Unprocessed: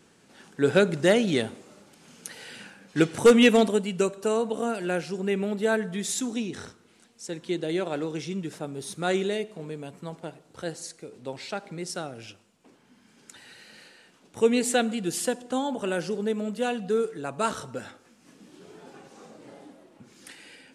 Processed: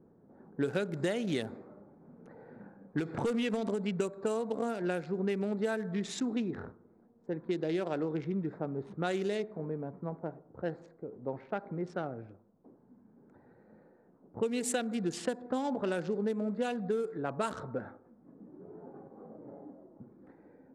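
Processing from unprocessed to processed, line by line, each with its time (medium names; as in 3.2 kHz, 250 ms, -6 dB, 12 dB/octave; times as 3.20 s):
2.99–3.90 s: compression 12:1, threshold -22 dBFS
whole clip: local Wiener filter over 15 samples; level-controlled noise filter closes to 650 Hz, open at -22 dBFS; compression 12:1, threshold -28 dBFS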